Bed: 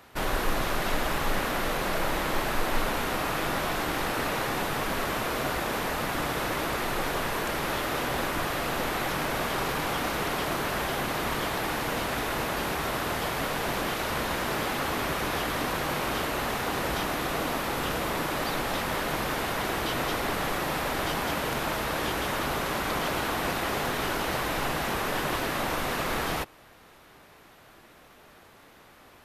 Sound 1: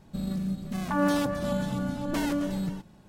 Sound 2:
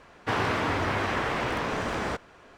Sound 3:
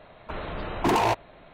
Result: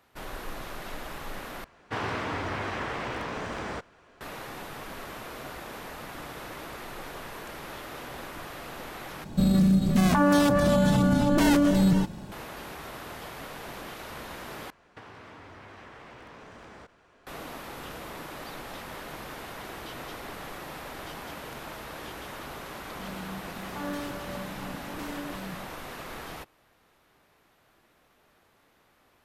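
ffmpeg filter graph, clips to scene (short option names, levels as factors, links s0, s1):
-filter_complex "[2:a]asplit=2[s0][s1];[1:a]asplit=2[s2][s3];[0:a]volume=0.282[s4];[s2]alimiter=level_in=22.4:limit=0.891:release=50:level=0:latency=1[s5];[s1]acompressor=threshold=0.0112:ratio=12:attack=18:release=96:knee=1:detection=peak[s6];[s4]asplit=4[s7][s8][s9][s10];[s7]atrim=end=1.644[s11];[s0]atrim=end=2.57,asetpts=PTS-STARTPTS,volume=0.562[s12];[s8]atrim=start=4.206:end=9.244[s13];[s5]atrim=end=3.08,asetpts=PTS-STARTPTS,volume=0.211[s14];[s9]atrim=start=12.316:end=14.704[s15];[s6]atrim=end=2.57,asetpts=PTS-STARTPTS,volume=0.398[s16];[s10]atrim=start=17.266[s17];[s3]atrim=end=3.08,asetpts=PTS-STARTPTS,volume=0.299,afade=t=in:d=0.004:c=hsin,afade=t=out:st=3.076:d=0.004:c=hsin,adelay=22850[s18];[s11][s12]acrossfade=d=0.004:c1=hsin:c2=hsin[s19];[s19][s13]acrossfade=d=0.004:c1=hsin:c2=hsin[s20];[s20][s14]acrossfade=d=0.004:c1=hsin:c2=hsin[s21];[s21][s15]acrossfade=d=0.004:c1=hsin:c2=hsin[s22];[s22][s16]acrossfade=d=0.004:c1=hsin:c2=hsin[s23];[s23][s17]acrossfade=d=0.004:c1=hsin:c2=hsin[s24];[s24][s18]amix=inputs=2:normalize=0"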